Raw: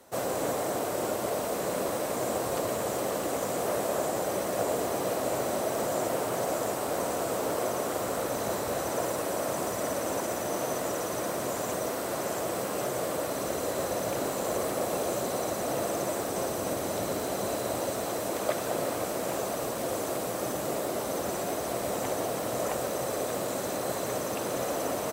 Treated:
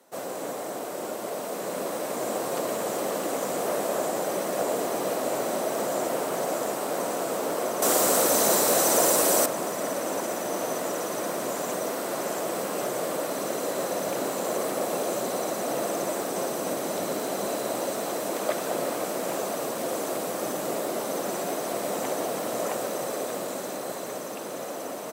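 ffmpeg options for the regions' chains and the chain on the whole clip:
ffmpeg -i in.wav -filter_complex "[0:a]asettb=1/sr,asplit=3[link_01][link_02][link_03];[link_01]atrim=end=7.824[link_04];[link_02]atrim=start=7.82:end=9.46,asetpts=PTS-STARTPTS,afade=type=in:duration=0.004:curve=qsin,afade=type=out:start_time=1.636:duration=0.004:curve=qsin,bass=frequency=250:gain=-2,treble=frequency=4000:gain=9,acontrast=64[link_05];[link_03]atrim=start=9.456[link_06];[link_04][link_05]acrossfade=duration=0.004:curve1=hsin:curve2=qsin[link_07];[link_07][link_06]acrossfade=duration=0.004:curve1=qsin:curve2=hsin,dynaudnorm=framelen=180:gausssize=21:maxgain=5.5dB,highpass=frequency=160:width=0.5412,highpass=frequency=160:width=1.3066,acontrast=26,volume=-8.5dB" out.wav

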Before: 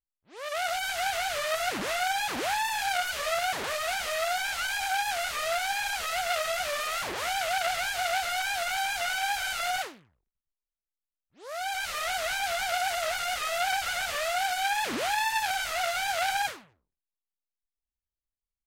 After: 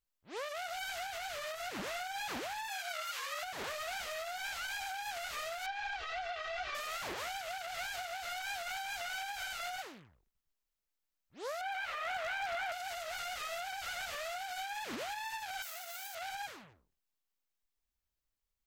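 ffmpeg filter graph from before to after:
ffmpeg -i in.wav -filter_complex "[0:a]asettb=1/sr,asplit=3[link_01][link_02][link_03];[link_01]atrim=end=2.684[link_04];[link_02]atrim=start=2.68:end=3.43,asetpts=PTS-STARTPTS,afade=type=in:duration=0.004:curve=qsin,afade=type=out:start_time=0.746:duration=0.004:curve=qsin,highpass=frequency=850:width=0.5412,highpass=frequency=850:width=1.3066,afreqshift=-90[link_05];[link_03]atrim=start=3.426[link_06];[link_04][link_05]acrossfade=duration=0.004:curve1=hsin:curve2=qsin[link_07];[link_07][link_06]acrossfade=duration=0.004:curve1=qsin:curve2=hsin,asettb=1/sr,asplit=3[link_08][link_09][link_10];[link_08]atrim=end=5.664[link_11];[link_09]atrim=start=5.66:end=6.75,asetpts=PTS-STARTPTS,afade=type=in:duration=0.004:curve=qsin,afade=type=out:start_time=1.086:duration=0.004:curve=qsin,lowpass=frequency=6000:width=0.5412,lowpass=frequency=6000:width=1.3066,aecho=1:1:2.6:0.86,atrim=end_sample=48069,acrossover=split=3800[link_12][link_13];[link_13]acompressor=threshold=-48dB:ratio=4:attack=1:release=60[link_14];[link_12][link_14]amix=inputs=2:normalize=0[link_15];[link_10]atrim=start=6.746[link_16];[link_11][link_15]acrossfade=duration=0.004:curve1=hsin:curve2=qsin[link_17];[link_17][link_16]acrossfade=duration=0.004:curve1=qsin:curve2=hsin,asettb=1/sr,asplit=3[link_18][link_19][link_20];[link_18]atrim=end=11.614[link_21];[link_19]atrim=start=11.61:end=12.72,asetpts=PTS-STARTPTS,afade=type=in:duration=0.004:curve=qsin,afade=type=out:start_time=1.106:duration=0.004:curve=qsin,acrossover=split=460 3000:gain=0.251 1 0.126[link_22][link_23][link_24];[link_22][link_23][link_24]amix=inputs=3:normalize=0,aeval=exprs='0.0531*(abs(mod(val(0)/0.0531+3,4)-2)-1)':channel_layout=same[link_25];[link_20]atrim=start=12.716[link_26];[link_21][link_25]acrossfade=duration=0.004:curve1=hsin:curve2=qsin[link_27];[link_27][link_26]acrossfade=duration=0.004:curve1=qsin:curve2=hsin,asettb=1/sr,asplit=3[link_28][link_29][link_30];[link_28]atrim=end=15.624[link_31];[link_29]atrim=start=15.62:end=16.15,asetpts=PTS-STARTPTS,afade=type=in:duration=0.004:curve=qsin,afade=type=out:start_time=0.526:duration=0.004:curve=qsin,aeval=exprs='if(lt(val(0),0),0.447*val(0),val(0))':channel_layout=same,highpass=frequency=350:width=0.5412,highpass=frequency=350:width=1.3066,aemphasis=mode=production:type=bsi[link_32];[link_30]atrim=start=16.146[link_33];[link_31][link_32]acrossfade=duration=0.004:curve1=hsin:curve2=qsin[link_34];[link_34][link_33]acrossfade=duration=0.004:curve1=qsin:curve2=hsin,acompressor=threshold=-35dB:ratio=5,alimiter=level_in=11dB:limit=-24dB:level=0:latency=1:release=354,volume=-11dB,equalizer=frequency=9500:width_type=o:width=0.21:gain=-7,volume=4.5dB" out.wav

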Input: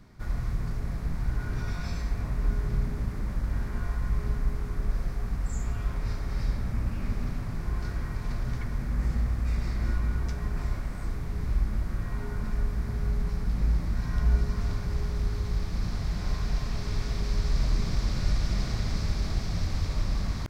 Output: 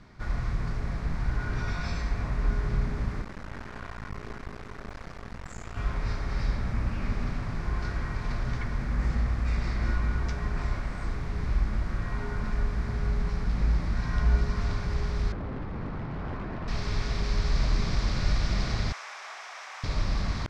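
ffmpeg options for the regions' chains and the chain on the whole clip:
ffmpeg -i in.wav -filter_complex "[0:a]asettb=1/sr,asplit=3[link_01][link_02][link_03];[link_01]atrim=end=3.224[link_04];[link_02]atrim=start=3.22:end=5.77,asetpts=PTS-STARTPTS,afade=type=in:duration=0.004:curve=qsin,afade=type=out:start_time=2.546:duration=0.004:curve=qsin,highpass=frequency=150:poles=1,aeval=exprs='max(val(0),0)':channel_layout=same[link_05];[link_03]atrim=start=5.766[link_06];[link_04][link_05]acrossfade=duration=0.004:curve1=hsin:curve2=qsin[link_07];[link_07][link_06]acrossfade=duration=0.004:curve1=qsin:curve2=hsin,asettb=1/sr,asplit=3[link_08][link_09][link_10];[link_08]atrim=end=15.324[link_11];[link_09]atrim=start=15.32:end=16.68,asetpts=PTS-STARTPTS,afade=type=in:duration=0.004:curve=qsin,afade=type=out:start_time=1.356:duration=0.004:curve=qsin,lowpass=1400,aeval=exprs='0.0335*(abs(mod(val(0)/0.0335+3,4)-2)-1)':channel_layout=same[link_12];[link_10]atrim=start=16.676[link_13];[link_11][link_12]acrossfade=duration=0.004:curve1=hsin:curve2=qsin[link_14];[link_14][link_13]acrossfade=duration=0.004:curve1=qsin:curve2=hsin,asettb=1/sr,asplit=3[link_15][link_16][link_17];[link_15]atrim=end=18.924[link_18];[link_16]atrim=start=18.92:end=19.84,asetpts=PTS-STARTPTS,afade=type=in:duration=0.004:curve=qsin,afade=type=out:start_time=0.916:duration=0.004:curve=qsin,highpass=frequency=760:width=0.5412,highpass=frequency=760:width=1.3066,equalizer=frequency=4400:width=2.4:gain=-13[link_19];[link_17]atrim=start=19.836[link_20];[link_18][link_19]acrossfade=duration=0.004:curve1=hsin:curve2=qsin[link_21];[link_21][link_20]acrossfade=duration=0.004:curve1=qsin:curve2=hsin,lowpass=6900,equalizer=frequency=1700:width=0.3:gain=5.5" out.wav

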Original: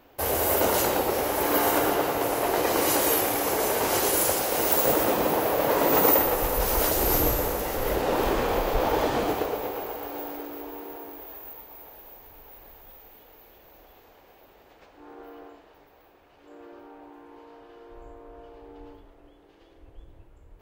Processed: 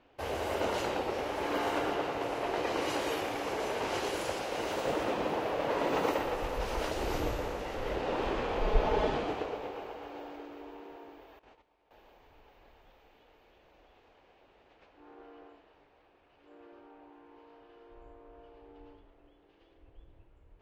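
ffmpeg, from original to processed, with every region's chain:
ffmpeg -i in.wav -filter_complex "[0:a]asettb=1/sr,asplit=3[link_01][link_02][link_03];[link_01]atrim=end=8.614[link_04];[link_02]atrim=start=8.61:end=9.17,asetpts=PTS-STARTPTS,afade=type=in:duration=0.004:curve=qsin,afade=type=out:start_time=0.556:duration=0.004:curve=qsin,lowshelf=frequency=290:gain=8,bandreject=frequency=230:width=7.6,aecho=1:1:4.7:0.56,atrim=end_sample=24696[link_05];[link_03]atrim=start=9.166[link_06];[link_04][link_05]acrossfade=duration=0.004:curve1=hsin:curve2=qsin[link_07];[link_07][link_06]acrossfade=duration=0.004:curve1=qsin:curve2=hsin,asettb=1/sr,asplit=3[link_08][link_09][link_10];[link_08]atrim=end=11.394[link_11];[link_09]atrim=start=11.39:end=11.91,asetpts=PTS-STARTPTS,afade=type=in:duration=0.004:curve=qsin,afade=type=out:start_time=0.516:duration=0.004:curve=qsin,agate=range=-14dB:threshold=-43dB:ratio=16:release=100:detection=peak,lowpass=frequency=9300:width=0.5412,lowpass=frequency=9300:width=1.3066[link_12];[link_10]atrim=start=11.906[link_13];[link_11][link_12]acrossfade=duration=0.004:curve1=hsin:curve2=qsin[link_14];[link_14][link_13]acrossfade=duration=0.004:curve1=qsin:curve2=hsin,lowpass=4600,equalizer=frequency=2700:width=2.4:gain=3.5,volume=-8dB" out.wav

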